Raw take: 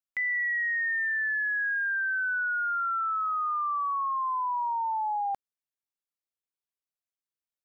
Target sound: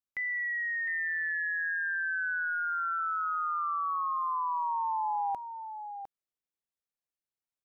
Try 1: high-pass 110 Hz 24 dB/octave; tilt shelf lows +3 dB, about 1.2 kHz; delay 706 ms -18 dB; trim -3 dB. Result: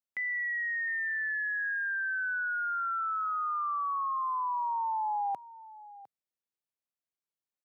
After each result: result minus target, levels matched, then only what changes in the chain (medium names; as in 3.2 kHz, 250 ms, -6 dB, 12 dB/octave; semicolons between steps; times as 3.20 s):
echo-to-direct -8.5 dB; 125 Hz band -2.5 dB
change: delay 706 ms -9.5 dB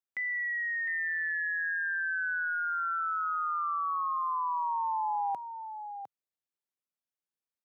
125 Hz band -2.5 dB
remove: high-pass 110 Hz 24 dB/octave